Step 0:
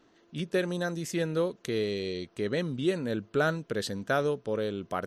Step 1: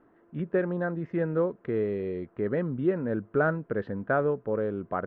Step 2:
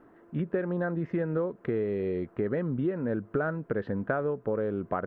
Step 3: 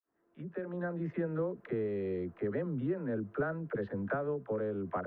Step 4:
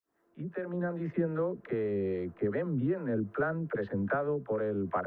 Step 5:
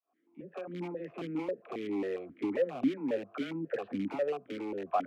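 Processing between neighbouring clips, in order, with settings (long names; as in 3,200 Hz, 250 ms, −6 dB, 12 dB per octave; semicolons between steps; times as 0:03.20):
low-pass filter 1,700 Hz 24 dB per octave; level +2 dB
downward compressor, threshold −31 dBFS, peak gain reduction 11 dB; level +5 dB
fade in at the beginning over 1.00 s; all-pass dispersion lows, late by 56 ms, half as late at 410 Hz; level −5 dB
two-band tremolo in antiphase 2.5 Hz, depth 50%, crossover 490 Hz; level +5.5 dB
in parallel at −7 dB: wrap-around overflow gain 26.5 dB; on the sum: formant filter that steps through the vowels 7.4 Hz; level +7 dB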